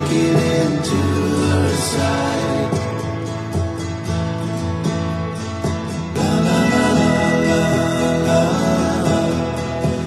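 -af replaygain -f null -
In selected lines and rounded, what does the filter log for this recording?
track_gain = -0.1 dB
track_peak = 0.530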